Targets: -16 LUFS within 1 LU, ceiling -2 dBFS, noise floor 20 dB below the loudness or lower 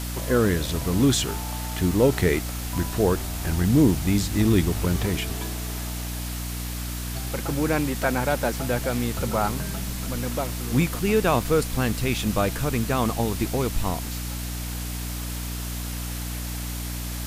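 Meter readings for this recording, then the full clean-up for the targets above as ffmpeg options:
hum 60 Hz; highest harmonic 300 Hz; hum level -29 dBFS; noise floor -31 dBFS; noise floor target -45 dBFS; loudness -25.0 LUFS; peak level -6.5 dBFS; loudness target -16.0 LUFS
-> -af "bandreject=f=60:t=h:w=4,bandreject=f=120:t=h:w=4,bandreject=f=180:t=h:w=4,bandreject=f=240:t=h:w=4,bandreject=f=300:t=h:w=4"
-af "afftdn=nr=14:nf=-31"
-af "volume=2.82,alimiter=limit=0.794:level=0:latency=1"

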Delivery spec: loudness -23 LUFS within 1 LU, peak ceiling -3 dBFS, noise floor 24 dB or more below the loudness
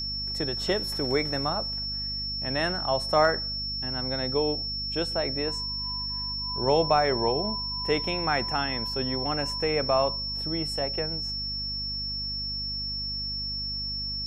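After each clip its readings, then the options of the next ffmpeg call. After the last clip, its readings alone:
hum 50 Hz; highest harmonic 250 Hz; hum level -37 dBFS; steady tone 5.4 kHz; tone level -30 dBFS; loudness -27.0 LUFS; peak level -9.0 dBFS; loudness target -23.0 LUFS
-> -af "bandreject=f=50:t=h:w=6,bandreject=f=100:t=h:w=6,bandreject=f=150:t=h:w=6,bandreject=f=200:t=h:w=6,bandreject=f=250:t=h:w=6"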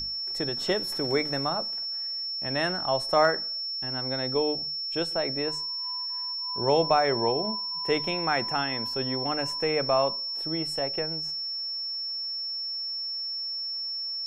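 hum not found; steady tone 5.4 kHz; tone level -30 dBFS
-> -af "bandreject=f=5400:w=30"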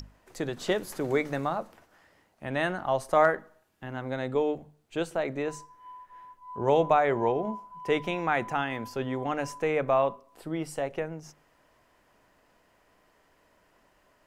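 steady tone not found; loudness -29.0 LUFS; peak level -9.5 dBFS; loudness target -23.0 LUFS
-> -af "volume=2"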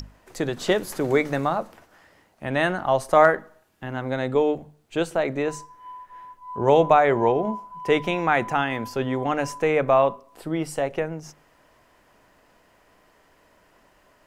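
loudness -23.0 LUFS; peak level -3.5 dBFS; noise floor -60 dBFS

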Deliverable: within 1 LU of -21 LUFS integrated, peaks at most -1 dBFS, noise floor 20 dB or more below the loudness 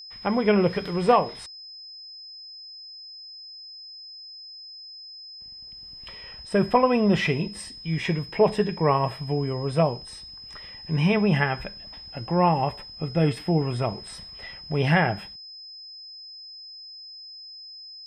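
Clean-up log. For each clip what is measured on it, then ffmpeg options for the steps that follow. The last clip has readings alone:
steady tone 5.1 kHz; tone level -40 dBFS; loudness -24.0 LUFS; peak level -6.5 dBFS; loudness target -21.0 LUFS
-> -af "bandreject=f=5100:w=30"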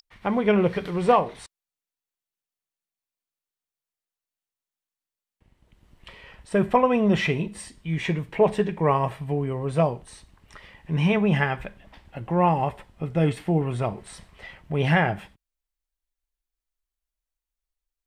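steady tone not found; loudness -24.0 LUFS; peak level -6.5 dBFS; loudness target -21.0 LUFS
-> -af "volume=1.41"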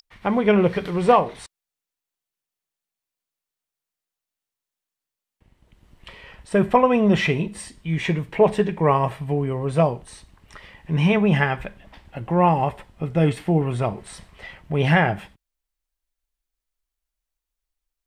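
loudness -21.0 LUFS; peak level -3.5 dBFS; noise floor -88 dBFS

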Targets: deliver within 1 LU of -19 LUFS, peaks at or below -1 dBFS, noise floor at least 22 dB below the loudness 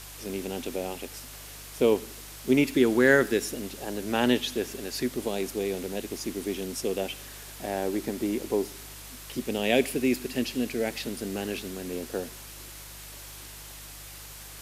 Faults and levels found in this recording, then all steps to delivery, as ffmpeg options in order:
hum 50 Hz; highest harmonic 150 Hz; hum level -47 dBFS; noise floor -44 dBFS; noise floor target -51 dBFS; loudness -28.5 LUFS; peak level -7.0 dBFS; loudness target -19.0 LUFS
-> -af "bandreject=f=50:t=h:w=4,bandreject=f=100:t=h:w=4,bandreject=f=150:t=h:w=4"
-af "afftdn=nr=7:nf=-44"
-af "volume=2.99,alimiter=limit=0.891:level=0:latency=1"

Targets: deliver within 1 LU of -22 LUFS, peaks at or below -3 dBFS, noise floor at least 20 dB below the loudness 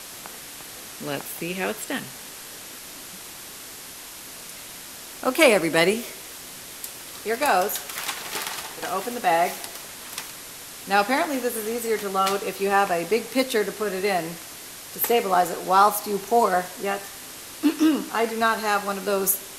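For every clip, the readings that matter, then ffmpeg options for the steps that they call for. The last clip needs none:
noise floor -40 dBFS; noise floor target -44 dBFS; loudness -23.5 LUFS; peak level -2.5 dBFS; loudness target -22.0 LUFS
-> -af "afftdn=nr=6:nf=-40"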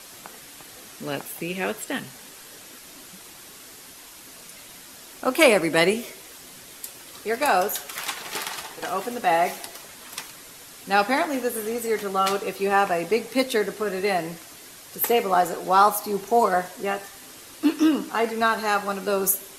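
noise floor -45 dBFS; loudness -23.5 LUFS; peak level -3.0 dBFS; loudness target -22.0 LUFS
-> -af "volume=1.19,alimiter=limit=0.708:level=0:latency=1"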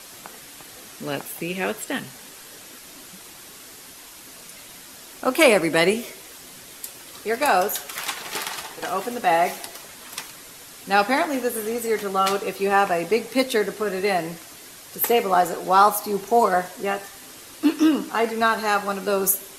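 loudness -22.0 LUFS; peak level -3.0 dBFS; noise floor -43 dBFS

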